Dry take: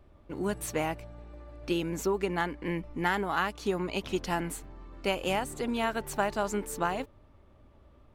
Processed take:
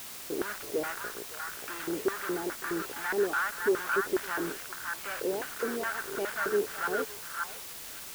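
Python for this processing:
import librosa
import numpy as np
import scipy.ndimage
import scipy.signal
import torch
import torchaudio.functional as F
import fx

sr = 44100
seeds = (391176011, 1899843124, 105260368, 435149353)

p1 = fx.high_shelf(x, sr, hz=6500.0, db=-8.0)
p2 = fx.notch(p1, sr, hz=1600.0, q=8.5)
p3 = fx.quant_companded(p2, sr, bits=2)
p4 = fx.filter_lfo_bandpass(p3, sr, shape='square', hz=2.4, low_hz=410.0, high_hz=1500.0, q=5.0)
p5 = p4 + fx.echo_stepped(p4, sr, ms=560, hz=1300.0, octaves=1.4, feedback_pct=70, wet_db=-0.5, dry=0)
p6 = fx.quant_dither(p5, sr, seeds[0], bits=8, dither='triangular')
y = F.gain(torch.from_numpy(p6), 5.0).numpy()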